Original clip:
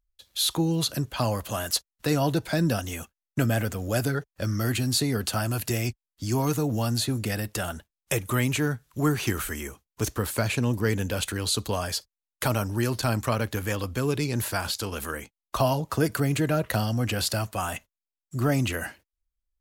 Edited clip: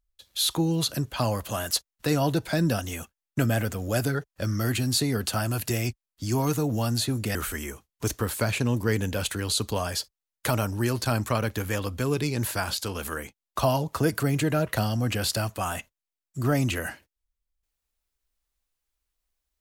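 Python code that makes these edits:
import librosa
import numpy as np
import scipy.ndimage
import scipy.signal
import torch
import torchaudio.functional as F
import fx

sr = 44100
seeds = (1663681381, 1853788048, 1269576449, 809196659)

y = fx.edit(x, sr, fx.cut(start_s=7.35, length_s=1.97), tone=tone)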